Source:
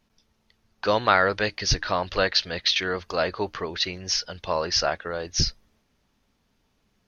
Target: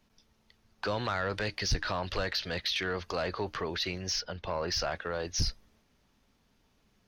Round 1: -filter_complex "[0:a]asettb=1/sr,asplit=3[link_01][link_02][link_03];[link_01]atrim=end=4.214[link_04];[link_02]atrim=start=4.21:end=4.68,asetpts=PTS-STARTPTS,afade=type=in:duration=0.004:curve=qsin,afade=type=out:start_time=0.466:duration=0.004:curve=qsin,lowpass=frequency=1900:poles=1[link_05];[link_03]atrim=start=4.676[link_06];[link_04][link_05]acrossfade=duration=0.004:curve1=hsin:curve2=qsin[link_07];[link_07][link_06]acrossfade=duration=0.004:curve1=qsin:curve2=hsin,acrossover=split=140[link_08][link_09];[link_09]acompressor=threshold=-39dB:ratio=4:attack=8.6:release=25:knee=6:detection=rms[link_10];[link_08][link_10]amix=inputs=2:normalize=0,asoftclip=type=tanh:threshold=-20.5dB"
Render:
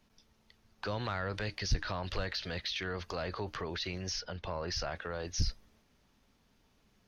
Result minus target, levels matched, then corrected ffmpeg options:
downward compressor: peak gain reduction +6 dB
-filter_complex "[0:a]asettb=1/sr,asplit=3[link_01][link_02][link_03];[link_01]atrim=end=4.214[link_04];[link_02]atrim=start=4.21:end=4.68,asetpts=PTS-STARTPTS,afade=type=in:duration=0.004:curve=qsin,afade=type=out:start_time=0.466:duration=0.004:curve=qsin,lowpass=frequency=1900:poles=1[link_05];[link_03]atrim=start=4.676[link_06];[link_04][link_05]acrossfade=duration=0.004:curve1=hsin:curve2=qsin[link_07];[link_07][link_06]acrossfade=duration=0.004:curve1=qsin:curve2=hsin,acrossover=split=140[link_08][link_09];[link_09]acompressor=threshold=-31dB:ratio=4:attack=8.6:release=25:knee=6:detection=rms[link_10];[link_08][link_10]amix=inputs=2:normalize=0,asoftclip=type=tanh:threshold=-20.5dB"

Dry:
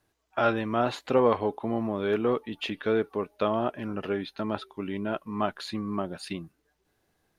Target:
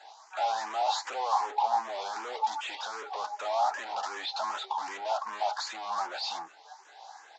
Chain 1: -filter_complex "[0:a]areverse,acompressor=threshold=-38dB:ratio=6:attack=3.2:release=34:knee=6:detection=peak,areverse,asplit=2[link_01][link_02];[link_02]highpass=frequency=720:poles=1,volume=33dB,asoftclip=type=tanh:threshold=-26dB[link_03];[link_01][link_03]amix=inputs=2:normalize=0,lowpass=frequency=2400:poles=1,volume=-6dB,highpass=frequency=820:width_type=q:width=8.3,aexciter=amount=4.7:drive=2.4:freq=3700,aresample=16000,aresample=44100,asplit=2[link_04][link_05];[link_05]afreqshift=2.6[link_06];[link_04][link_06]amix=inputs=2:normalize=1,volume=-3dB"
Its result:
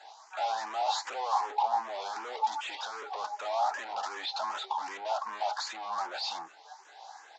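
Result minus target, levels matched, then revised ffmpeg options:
downward compressor: peak gain reduction +8 dB
-filter_complex "[0:a]areverse,acompressor=threshold=-28.5dB:ratio=6:attack=3.2:release=34:knee=6:detection=peak,areverse,asplit=2[link_01][link_02];[link_02]highpass=frequency=720:poles=1,volume=33dB,asoftclip=type=tanh:threshold=-26dB[link_03];[link_01][link_03]amix=inputs=2:normalize=0,lowpass=frequency=2400:poles=1,volume=-6dB,highpass=frequency=820:width_type=q:width=8.3,aexciter=amount=4.7:drive=2.4:freq=3700,aresample=16000,aresample=44100,asplit=2[link_04][link_05];[link_05]afreqshift=2.6[link_06];[link_04][link_06]amix=inputs=2:normalize=1,volume=-3dB"

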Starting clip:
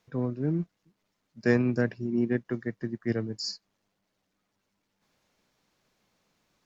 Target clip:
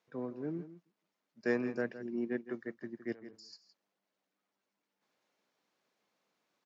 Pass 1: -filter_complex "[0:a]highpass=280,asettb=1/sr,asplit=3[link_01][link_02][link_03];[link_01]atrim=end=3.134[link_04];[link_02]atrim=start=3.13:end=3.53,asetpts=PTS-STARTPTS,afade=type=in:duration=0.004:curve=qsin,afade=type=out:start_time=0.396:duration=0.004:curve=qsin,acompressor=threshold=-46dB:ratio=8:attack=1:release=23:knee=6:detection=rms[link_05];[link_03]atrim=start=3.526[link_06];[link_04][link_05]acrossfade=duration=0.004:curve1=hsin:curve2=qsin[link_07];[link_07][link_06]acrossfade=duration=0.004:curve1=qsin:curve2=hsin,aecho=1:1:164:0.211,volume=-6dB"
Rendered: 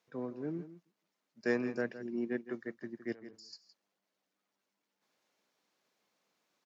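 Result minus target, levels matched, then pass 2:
8,000 Hz band +2.5 dB
-filter_complex "[0:a]highpass=280,highshelf=frequency=4400:gain=-6,asettb=1/sr,asplit=3[link_01][link_02][link_03];[link_01]atrim=end=3.134[link_04];[link_02]atrim=start=3.13:end=3.53,asetpts=PTS-STARTPTS,afade=type=in:duration=0.004:curve=qsin,afade=type=out:start_time=0.396:duration=0.004:curve=qsin,acompressor=threshold=-46dB:ratio=8:attack=1:release=23:knee=6:detection=rms[link_05];[link_03]atrim=start=3.526[link_06];[link_04][link_05]acrossfade=duration=0.004:curve1=hsin:curve2=qsin[link_07];[link_07][link_06]acrossfade=duration=0.004:curve1=qsin:curve2=hsin,aecho=1:1:164:0.211,volume=-6dB"

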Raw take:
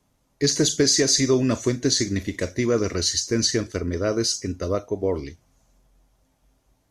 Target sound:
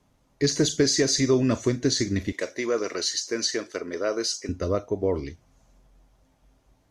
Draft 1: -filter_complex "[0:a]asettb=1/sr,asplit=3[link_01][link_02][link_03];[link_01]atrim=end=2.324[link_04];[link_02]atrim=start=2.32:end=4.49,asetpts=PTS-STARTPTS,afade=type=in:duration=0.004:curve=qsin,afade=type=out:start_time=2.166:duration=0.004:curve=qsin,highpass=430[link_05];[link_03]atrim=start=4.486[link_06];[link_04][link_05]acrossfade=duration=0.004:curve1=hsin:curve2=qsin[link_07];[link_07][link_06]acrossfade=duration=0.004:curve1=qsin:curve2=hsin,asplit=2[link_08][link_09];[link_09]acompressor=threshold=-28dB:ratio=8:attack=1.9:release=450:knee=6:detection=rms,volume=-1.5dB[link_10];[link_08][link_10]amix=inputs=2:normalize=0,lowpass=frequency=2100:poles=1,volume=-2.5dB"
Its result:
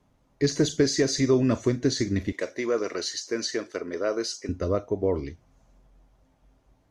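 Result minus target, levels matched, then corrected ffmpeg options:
4,000 Hz band −3.5 dB
-filter_complex "[0:a]asettb=1/sr,asplit=3[link_01][link_02][link_03];[link_01]atrim=end=2.324[link_04];[link_02]atrim=start=2.32:end=4.49,asetpts=PTS-STARTPTS,afade=type=in:duration=0.004:curve=qsin,afade=type=out:start_time=2.166:duration=0.004:curve=qsin,highpass=430[link_05];[link_03]atrim=start=4.486[link_06];[link_04][link_05]acrossfade=duration=0.004:curve1=hsin:curve2=qsin[link_07];[link_07][link_06]acrossfade=duration=0.004:curve1=qsin:curve2=hsin,asplit=2[link_08][link_09];[link_09]acompressor=threshold=-28dB:ratio=8:attack=1.9:release=450:knee=6:detection=rms,volume=-1.5dB[link_10];[link_08][link_10]amix=inputs=2:normalize=0,lowpass=frequency=4700:poles=1,volume=-2.5dB"

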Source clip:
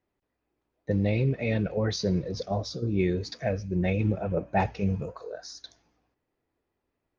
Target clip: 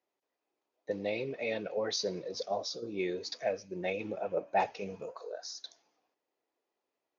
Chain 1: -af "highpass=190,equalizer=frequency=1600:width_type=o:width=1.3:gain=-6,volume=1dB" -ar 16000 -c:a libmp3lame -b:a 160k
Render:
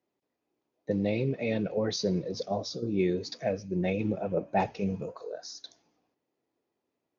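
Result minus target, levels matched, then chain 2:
250 Hz band +6.5 dB
-af "highpass=510,equalizer=frequency=1600:width_type=o:width=1.3:gain=-6,volume=1dB" -ar 16000 -c:a libmp3lame -b:a 160k

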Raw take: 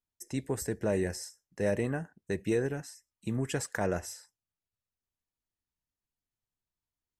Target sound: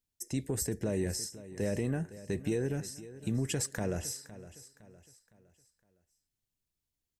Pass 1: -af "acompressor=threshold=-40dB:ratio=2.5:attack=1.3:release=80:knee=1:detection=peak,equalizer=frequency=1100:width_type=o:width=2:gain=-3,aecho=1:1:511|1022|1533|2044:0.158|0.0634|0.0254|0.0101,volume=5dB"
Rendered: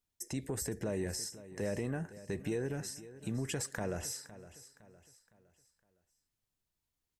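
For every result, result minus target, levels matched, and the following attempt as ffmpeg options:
downward compressor: peak gain reduction +5.5 dB; 1,000 Hz band +3.5 dB
-af "acompressor=threshold=-31dB:ratio=2.5:attack=1.3:release=80:knee=1:detection=peak,equalizer=frequency=1100:width_type=o:width=2:gain=-3,aecho=1:1:511|1022|1533|2044:0.158|0.0634|0.0254|0.0101,volume=5dB"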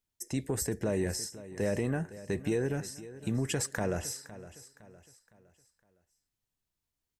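1,000 Hz band +4.0 dB
-af "acompressor=threshold=-31dB:ratio=2.5:attack=1.3:release=80:knee=1:detection=peak,equalizer=frequency=1100:width_type=o:width=2:gain=-9.5,aecho=1:1:511|1022|1533|2044:0.158|0.0634|0.0254|0.0101,volume=5dB"

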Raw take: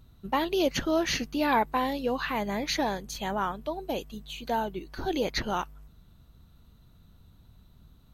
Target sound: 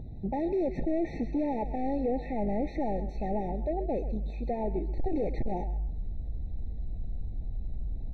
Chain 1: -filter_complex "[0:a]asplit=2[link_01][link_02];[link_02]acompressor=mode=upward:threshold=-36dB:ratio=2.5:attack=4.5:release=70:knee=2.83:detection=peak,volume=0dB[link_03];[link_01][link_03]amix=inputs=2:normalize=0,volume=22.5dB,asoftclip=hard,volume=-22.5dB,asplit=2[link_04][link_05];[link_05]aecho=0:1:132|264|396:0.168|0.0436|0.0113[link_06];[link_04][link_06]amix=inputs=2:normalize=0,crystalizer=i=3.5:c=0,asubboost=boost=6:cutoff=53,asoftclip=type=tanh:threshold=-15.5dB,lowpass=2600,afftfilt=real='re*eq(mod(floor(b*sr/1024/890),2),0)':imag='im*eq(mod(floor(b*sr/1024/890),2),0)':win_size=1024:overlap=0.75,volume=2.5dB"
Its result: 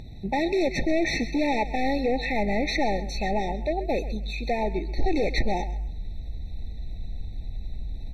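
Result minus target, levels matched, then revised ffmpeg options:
2,000 Hz band +14.0 dB; soft clipping: distortion −9 dB
-filter_complex "[0:a]asplit=2[link_01][link_02];[link_02]acompressor=mode=upward:threshold=-36dB:ratio=2.5:attack=4.5:release=70:knee=2.83:detection=peak,volume=0dB[link_03];[link_01][link_03]amix=inputs=2:normalize=0,volume=22.5dB,asoftclip=hard,volume=-22.5dB,asplit=2[link_04][link_05];[link_05]aecho=0:1:132|264|396:0.168|0.0436|0.0113[link_06];[link_04][link_06]amix=inputs=2:normalize=0,crystalizer=i=3.5:c=0,asubboost=boost=6:cutoff=53,asoftclip=type=tanh:threshold=-26.5dB,lowpass=790,afftfilt=real='re*eq(mod(floor(b*sr/1024/890),2),0)':imag='im*eq(mod(floor(b*sr/1024/890),2),0)':win_size=1024:overlap=0.75,volume=2.5dB"

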